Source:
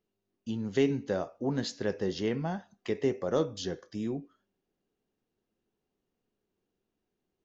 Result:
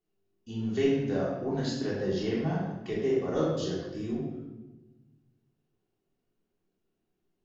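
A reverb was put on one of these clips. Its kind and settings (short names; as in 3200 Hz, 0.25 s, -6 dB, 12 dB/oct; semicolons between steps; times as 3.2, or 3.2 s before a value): shoebox room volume 600 m³, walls mixed, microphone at 3.4 m; gain -7.5 dB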